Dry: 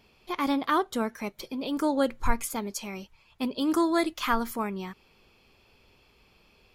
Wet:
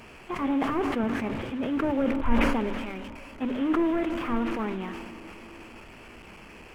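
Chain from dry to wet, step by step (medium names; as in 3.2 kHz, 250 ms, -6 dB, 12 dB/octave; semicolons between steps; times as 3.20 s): one-bit delta coder 16 kbps, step -37.5 dBFS; peaking EQ 250 Hz +3 dB 0.25 oct; hum notches 50/100/150/200/250/300 Hz; 1.03–1.92 s: peaking EQ 100 Hz +15 dB 1 oct; crossover distortion -53 dBFS; on a send at -14.5 dB: reverberation RT60 6.5 s, pre-delay 51 ms; on the sum: decay stretcher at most 30 dB/s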